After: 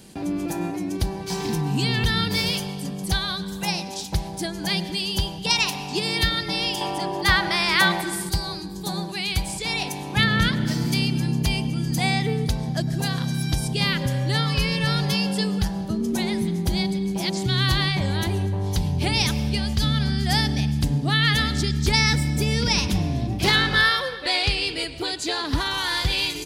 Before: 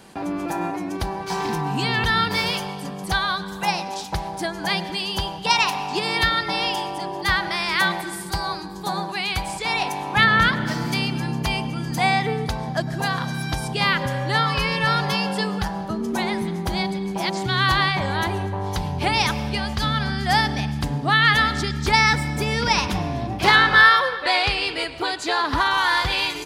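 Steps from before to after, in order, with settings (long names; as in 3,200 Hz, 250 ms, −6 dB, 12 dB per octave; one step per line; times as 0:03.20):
parametric band 1,100 Hz −14.5 dB 2.3 octaves, from 0:06.81 −4 dB, from 0:08.29 −15 dB
level +4.5 dB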